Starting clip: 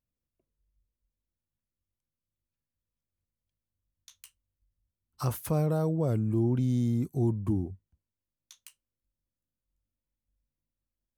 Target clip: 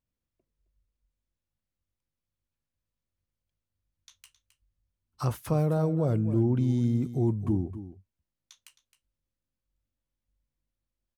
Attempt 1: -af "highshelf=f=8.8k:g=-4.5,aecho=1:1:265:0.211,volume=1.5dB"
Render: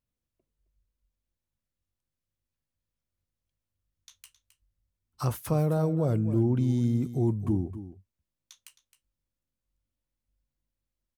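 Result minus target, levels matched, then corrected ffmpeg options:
8000 Hz band +3.5 dB
-af "highshelf=f=8.8k:g=-12,aecho=1:1:265:0.211,volume=1.5dB"

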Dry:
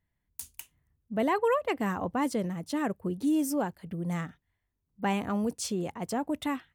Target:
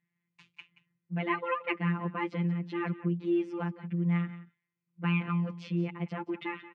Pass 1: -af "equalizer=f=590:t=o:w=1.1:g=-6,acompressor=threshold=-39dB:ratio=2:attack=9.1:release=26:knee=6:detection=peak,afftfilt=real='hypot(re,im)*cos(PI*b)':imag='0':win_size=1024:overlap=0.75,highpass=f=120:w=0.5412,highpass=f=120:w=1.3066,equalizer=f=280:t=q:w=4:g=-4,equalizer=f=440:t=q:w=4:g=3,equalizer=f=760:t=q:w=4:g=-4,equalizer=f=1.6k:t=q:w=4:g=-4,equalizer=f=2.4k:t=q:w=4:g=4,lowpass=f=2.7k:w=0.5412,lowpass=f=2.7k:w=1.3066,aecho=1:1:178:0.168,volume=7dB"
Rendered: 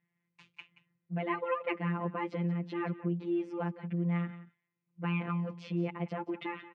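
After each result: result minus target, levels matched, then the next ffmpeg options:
compressor: peak gain reduction +7.5 dB; 500 Hz band +2.5 dB
-af "equalizer=f=590:t=o:w=1.1:g=-6,afftfilt=real='hypot(re,im)*cos(PI*b)':imag='0':win_size=1024:overlap=0.75,highpass=f=120:w=0.5412,highpass=f=120:w=1.3066,equalizer=f=280:t=q:w=4:g=-4,equalizer=f=440:t=q:w=4:g=3,equalizer=f=760:t=q:w=4:g=-4,equalizer=f=1.6k:t=q:w=4:g=-4,equalizer=f=2.4k:t=q:w=4:g=4,lowpass=f=2.7k:w=0.5412,lowpass=f=2.7k:w=1.3066,aecho=1:1:178:0.168,volume=7dB"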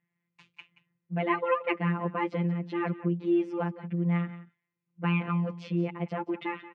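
500 Hz band +3.0 dB
-af "equalizer=f=590:t=o:w=1.1:g=-15.5,afftfilt=real='hypot(re,im)*cos(PI*b)':imag='0':win_size=1024:overlap=0.75,highpass=f=120:w=0.5412,highpass=f=120:w=1.3066,equalizer=f=280:t=q:w=4:g=-4,equalizer=f=440:t=q:w=4:g=3,equalizer=f=760:t=q:w=4:g=-4,equalizer=f=1.6k:t=q:w=4:g=-4,equalizer=f=2.4k:t=q:w=4:g=4,lowpass=f=2.7k:w=0.5412,lowpass=f=2.7k:w=1.3066,aecho=1:1:178:0.168,volume=7dB"

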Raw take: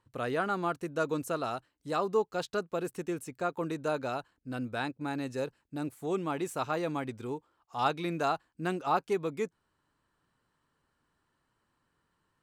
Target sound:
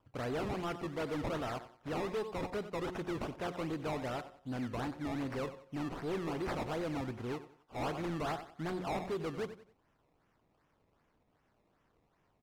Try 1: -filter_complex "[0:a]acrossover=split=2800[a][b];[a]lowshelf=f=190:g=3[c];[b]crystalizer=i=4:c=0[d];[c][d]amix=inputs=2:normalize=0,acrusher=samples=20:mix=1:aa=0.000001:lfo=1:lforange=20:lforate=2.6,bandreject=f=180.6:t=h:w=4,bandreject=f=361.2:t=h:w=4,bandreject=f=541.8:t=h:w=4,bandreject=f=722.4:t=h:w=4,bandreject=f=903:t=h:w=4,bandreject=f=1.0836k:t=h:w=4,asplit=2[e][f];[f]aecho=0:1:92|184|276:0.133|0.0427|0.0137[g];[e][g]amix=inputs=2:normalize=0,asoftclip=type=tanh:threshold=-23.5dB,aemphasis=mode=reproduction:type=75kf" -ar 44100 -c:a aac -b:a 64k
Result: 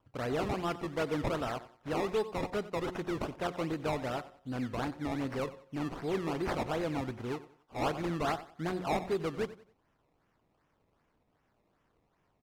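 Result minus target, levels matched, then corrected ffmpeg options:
soft clip: distortion -8 dB
-filter_complex "[0:a]acrossover=split=2800[a][b];[a]lowshelf=f=190:g=3[c];[b]crystalizer=i=4:c=0[d];[c][d]amix=inputs=2:normalize=0,acrusher=samples=20:mix=1:aa=0.000001:lfo=1:lforange=20:lforate=2.6,bandreject=f=180.6:t=h:w=4,bandreject=f=361.2:t=h:w=4,bandreject=f=541.8:t=h:w=4,bandreject=f=722.4:t=h:w=4,bandreject=f=903:t=h:w=4,bandreject=f=1.0836k:t=h:w=4,asplit=2[e][f];[f]aecho=0:1:92|184|276:0.133|0.0427|0.0137[g];[e][g]amix=inputs=2:normalize=0,asoftclip=type=tanh:threshold=-32dB,aemphasis=mode=reproduction:type=75kf" -ar 44100 -c:a aac -b:a 64k

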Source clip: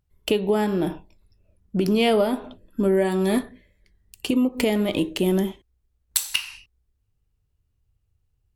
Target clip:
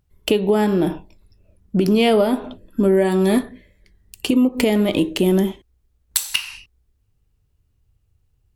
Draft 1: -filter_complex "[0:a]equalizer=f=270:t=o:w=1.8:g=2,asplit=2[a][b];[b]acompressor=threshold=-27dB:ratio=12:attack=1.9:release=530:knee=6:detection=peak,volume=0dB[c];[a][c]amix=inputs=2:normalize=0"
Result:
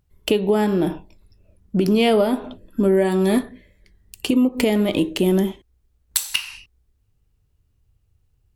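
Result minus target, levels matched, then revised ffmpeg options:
compressor: peak gain reduction +5.5 dB
-filter_complex "[0:a]equalizer=f=270:t=o:w=1.8:g=2,asplit=2[a][b];[b]acompressor=threshold=-21dB:ratio=12:attack=1.9:release=530:knee=6:detection=peak,volume=0dB[c];[a][c]amix=inputs=2:normalize=0"

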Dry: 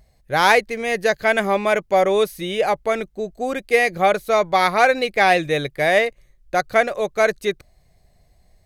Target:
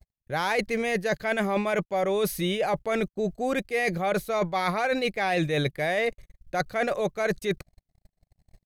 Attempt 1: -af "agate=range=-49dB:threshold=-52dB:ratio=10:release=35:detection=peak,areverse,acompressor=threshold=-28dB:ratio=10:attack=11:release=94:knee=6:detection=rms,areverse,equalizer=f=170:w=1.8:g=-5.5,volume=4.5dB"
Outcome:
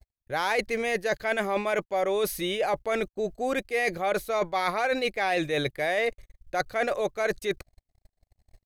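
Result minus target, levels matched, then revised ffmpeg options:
125 Hz band -7.5 dB
-af "agate=range=-49dB:threshold=-52dB:ratio=10:release=35:detection=peak,areverse,acompressor=threshold=-28dB:ratio=10:attack=11:release=94:knee=6:detection=rms,areverse,equalizer=f=170:w=1.8:g=4.5,volume=4.5dB"

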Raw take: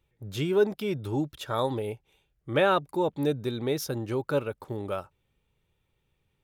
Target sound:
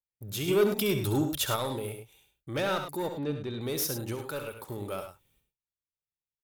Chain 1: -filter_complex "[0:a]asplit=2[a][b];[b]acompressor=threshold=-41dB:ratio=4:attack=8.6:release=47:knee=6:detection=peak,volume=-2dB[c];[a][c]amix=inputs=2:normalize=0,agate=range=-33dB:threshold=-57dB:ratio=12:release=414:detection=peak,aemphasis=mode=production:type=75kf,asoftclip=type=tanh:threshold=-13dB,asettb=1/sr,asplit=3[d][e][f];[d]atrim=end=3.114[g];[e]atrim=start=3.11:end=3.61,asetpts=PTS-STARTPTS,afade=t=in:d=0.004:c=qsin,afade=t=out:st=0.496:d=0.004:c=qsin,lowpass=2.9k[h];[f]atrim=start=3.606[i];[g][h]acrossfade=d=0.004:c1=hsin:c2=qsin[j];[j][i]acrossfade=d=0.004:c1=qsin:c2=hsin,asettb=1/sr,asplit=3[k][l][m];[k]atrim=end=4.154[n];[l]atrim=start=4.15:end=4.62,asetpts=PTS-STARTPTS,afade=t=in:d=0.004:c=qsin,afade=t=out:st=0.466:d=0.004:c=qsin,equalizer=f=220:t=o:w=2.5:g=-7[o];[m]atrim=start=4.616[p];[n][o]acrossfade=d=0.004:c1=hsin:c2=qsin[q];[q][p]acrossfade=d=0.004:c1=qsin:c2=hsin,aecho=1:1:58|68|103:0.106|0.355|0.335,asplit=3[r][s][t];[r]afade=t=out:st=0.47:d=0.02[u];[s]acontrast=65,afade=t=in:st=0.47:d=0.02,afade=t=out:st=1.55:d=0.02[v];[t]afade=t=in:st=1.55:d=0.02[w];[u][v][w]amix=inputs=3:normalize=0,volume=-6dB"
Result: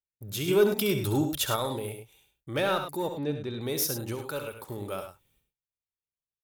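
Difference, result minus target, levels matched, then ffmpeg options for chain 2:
soft clip: distortion -8 dB
-filter_complex "[0:a]asplit=2[a][b];[b]acompressor=threshold=-41dB:ratio=4:attack=8.6:release=47:knee=6:detection=peak,volume=-2dB[c];[a][c]amix=inputs=2:normalize=0,agate=range=-33dB:threshold=-57dB:ratio=12:release=414:detection=peak,aemphasis=mode=production:type=75kf,asoftclip=type=tanh:threshold=-19.5dB,asettb=1/sr,asplit=3[d][e][f];[d]atrim=end=3.114[g];[e]atrim=start=3.11:end=3.61,asetpts=PTS-STARTPTS,afade=t=in:d=0.004:c=qsin,afade=t=out:st=0.496:d=0.004:c=qsin,lowpass=2.9k[h];[f]atrim=start=3.606[i];[g][h]acrossfade=d=0.004:c1=hsin:c2=qsin[j];[j][i]acrossfade=d=0.004:c1=qsin:c2=hsin,asettb=1/sr,asplit=3[k][l][m];[k]atrim=end=4.154[n];[l]atrim=start=4.15:end=4.62,asetpts=PTS-STARTPTS,afade=t=in:d=0.004:c=qsin,afade=t=out:st=0.466:d=0.004:c=qsin,equalizer=f=220:t=o:w=2.5:g=-7[o];[m]atrim=start=4.616[p];[n][o]acrossfade=d=0.004:c1=hsin:c2=qsin[q];[q][p]acrossfade=d=0.004:c1=qsin:c2=hsin,aecho=1:1:58|68|103:0.106|0.355|0.335,asplit=3[r][s][t];[r]afade=t=out:st=0.47:d=0.02[u];[s]acontrast=65,afade=t=in:st=0.47:d=0.02,afade=t=out:st=1.55:d=0.02[v];[t]afade=t=in:st=1.55:d=0.02[w];[u][v][w]amix=inputs=3:normalize=0,volume=-6dB"

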